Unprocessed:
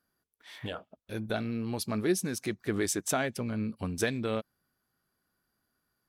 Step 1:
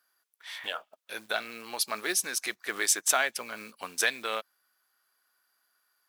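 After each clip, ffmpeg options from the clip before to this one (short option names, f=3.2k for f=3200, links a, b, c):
-af "acrusher=bits=8:mode=log:mix=0:aa=0.000001,highpass=970,volume=8dB"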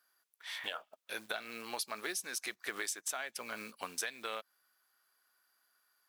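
-af "acompressor=threshold=-33dB:ratio=12,volume=-1.5dB"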